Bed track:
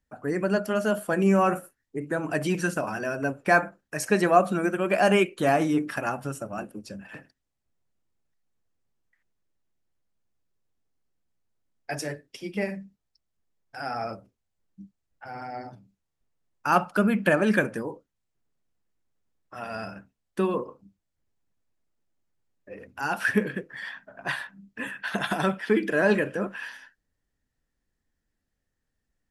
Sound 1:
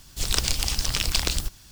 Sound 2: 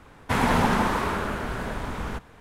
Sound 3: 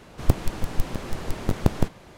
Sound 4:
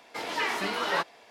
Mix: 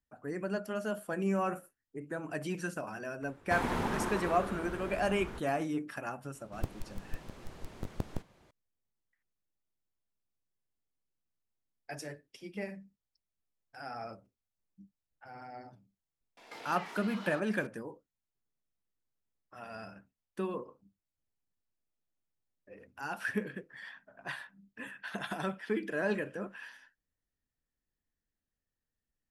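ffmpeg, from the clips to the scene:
-filter_complex "[0:a]volume=0.299[s0];[2:a]equalizer=f=360:t=o:w=0.37:g=8.5[s1];[4:a]acompressor=threshold=0.00794:ratio=6:attack=3.2:release=140:knee=1:detection=peak[s2];[s1]atrim=end=2.4,asetpts=PTS-STARTPTS,volume=0.237,afade=t=in:d=0.004:c=hsin,afade=t=out:st=2.396:d=0.004:c=hsin,adelay=141561S[s3];[3:a]atrim=end=2.17,asetpts=PTS-STARTPTS,volume=0.158,afade=t=in:d=0.004:c=hsin,afade=t=out:st=2.166:d=0.004:c=hsin,adelay=279594S[s4];[s2]atrim=end=1.3,asetpts=PTS-STARTPTS,volume=0.794,afade=t=in:d=0.004:c=hsin,afade=t=out:st=1.296:d=0.004:c=hsin,adelay=16370[s5];[s0][s3][s4][s5]amix=inputs=4:normalize=0"

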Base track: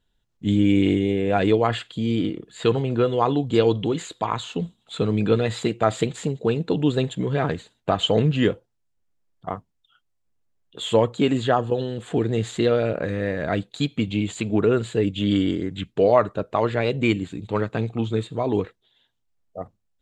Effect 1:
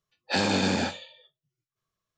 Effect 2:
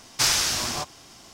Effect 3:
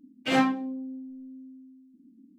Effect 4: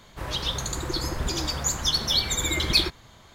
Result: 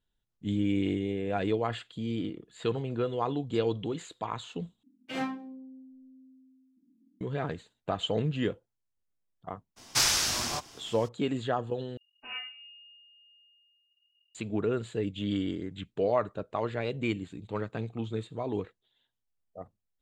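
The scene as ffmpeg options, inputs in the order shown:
-filter_complex "[3:a]asplit=2[s0][s1];[0:a]volume=0.316[s2];[s1]lowpass=f=2600:t=q:w=0.5098,lowpass=f=2600:t=q:w=0.6013,lowpass=f=2600:t=q:w=0.9,lowpass=f=2600:t=q:w=2.563,afreqshift=-3100[s3];[s2]asplit=3[s4][s5][s6];[s4]atrim=end=4.834[s7];[s0]atrim=end=2.38,asetpts=PTS-STARTPTS,volume=0.299[s8];[s5]atrim=start=7.206:end=11.974[s9];[s3]atrim=end=2.38,asetpts=PTS-STARTPTS,volume=0.141[s10];[s6]atrim=start=14.346[s11];[2:a]atrim=end=1.33,asetpts=PTS-STARTPTS,volume=0.668,afade=t=in:d=0.02,afade=t=out:st=1.31:d=0.02,adelay=9760[s12];[s7][s8]acrossfade=d=0.004:c1=hsin:c2=hsin[s13];[s13][s9]acrossfade=d=0.004:c1=hsin:c2=hsin[s14];[s14][s10]acrossfade=d=0.004:c1=hsin:c2=hsin[s15];[s15][s11]acrossfade=d=0.004:c1=hsin:c2=hsin[s16];[s16][s12]amix=inputs=2:normalize=0"

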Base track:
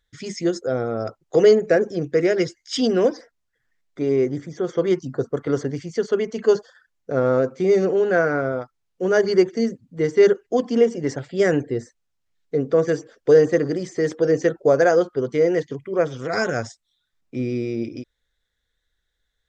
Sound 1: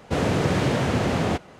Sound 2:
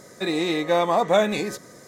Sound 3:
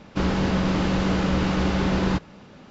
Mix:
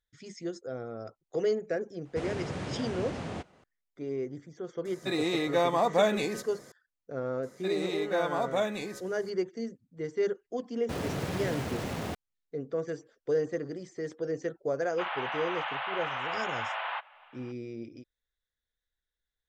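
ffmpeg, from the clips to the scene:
-filter_complex "[1:a]asplit=2[s0][s1];[2:a]asplit=2[s2][s3];[0:a]volume=0.188[s4];[s0]aresample=22050,aresample=44100[s5];[s1]aeval=exprs='val(0)*gte(abs(val(0)),0.0473)':c=same[s6];[3:a]asuperpass=centerf=1500:order=12:qfactor=0.57[s7];[s5]atrim=end=1.59,asetpts=PTS-STARTPTS,volume=0.2,afade=t=in:d=0.004:c=hsin,afade=t=out:st=1.586:d=0.004:c=hsin,adelay=2050[s8];[s2]atrim=end=1.87,asetpts=PTS-STARTPTS,volume=0.531,afade=t=in:d=0.004:c=hsin,afade=t=out:st=1.866:d=0.004:c=hsin,adelay=213885S[s9];[s3]atrim=end=1.87,asetpts=PTS-STARTPTS,volume=0.299,afade=t=in:d=0.004:c=hsin,afade=t=out:st=1.866:d=0.004:c=hsin,adelay=7430[s10];[s6]atrim=end=1.59,asetpts=PTS-STARTPTS,volume=0.266,afade=t=in:d=0.004:c=hsin,afade=t=out:st=1.586:d=0.004:c=hsin,adelay=10780[s11];[s7]atrim=end=2.7,asetpts=PTS-STARTPTS,volume=0.75,afade=t=in:d=0.004:c=hsin,afade=t=out:st=2.696:d=0.004:c=hsin,adelay=14820[s12];[s4][s8][s9][s10][s11][s12]amix=inputs=6:normalize=0"

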